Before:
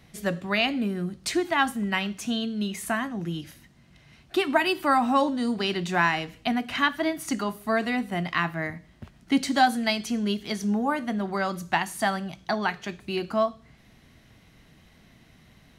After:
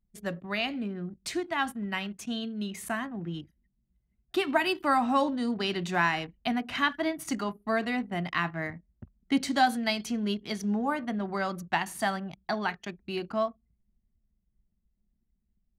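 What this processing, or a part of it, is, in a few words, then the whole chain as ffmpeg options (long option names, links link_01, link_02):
voice memo with heavy noise removal: -af "anlmdn=0.631,dynaudnorm=framelen=700:gausssize=9:maxgain=4dB,volume=-6.5dB"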